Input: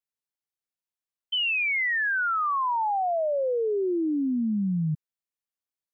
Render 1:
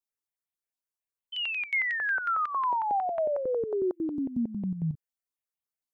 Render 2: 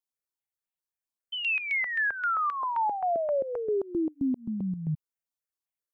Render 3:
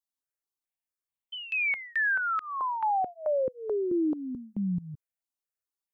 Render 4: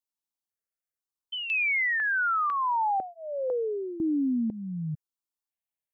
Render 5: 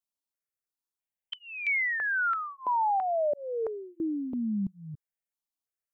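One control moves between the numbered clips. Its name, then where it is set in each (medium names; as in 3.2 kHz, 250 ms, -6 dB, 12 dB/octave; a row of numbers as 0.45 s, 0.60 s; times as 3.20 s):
stepped phaser, rate: 11 Hz, 7.6 Hz, 4.6 Hz, 2 Hz, 3 Hz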